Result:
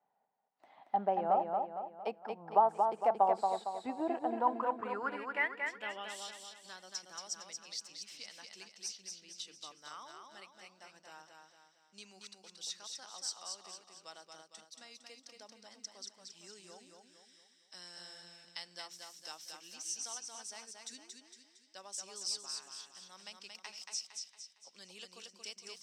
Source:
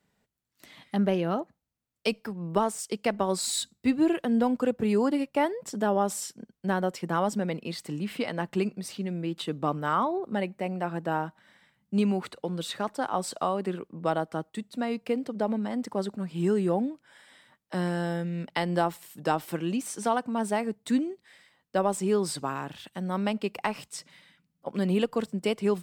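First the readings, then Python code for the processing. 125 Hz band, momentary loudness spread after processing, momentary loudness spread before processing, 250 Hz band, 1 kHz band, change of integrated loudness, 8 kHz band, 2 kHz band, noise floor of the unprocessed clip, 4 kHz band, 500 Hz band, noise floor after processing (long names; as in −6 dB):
−28.0 dB, 22 LU, 9 LU, −21.0 dB, −4.0 dB, −8.5 dB, −4.5 dB, −7.0 dB, −78 dBFS, −5.0 dB, −11.5 dB, −69 dBFS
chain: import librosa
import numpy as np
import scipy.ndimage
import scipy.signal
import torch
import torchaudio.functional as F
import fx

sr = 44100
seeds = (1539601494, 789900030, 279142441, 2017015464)

p1 = fx.filter_sweep_bandpass(x, sr, from_hz=790.0, to_hz=5700.0, start_s=4.23, end_s=6.92, q=6.6)
p2 = p1 + fx.echo_feedback(p1, sr, ms=229, feedback_pct=45, wet_db=-4.5, dry=0)
y = F.gain(torch.from_numpy(p2), 7.5).numpy()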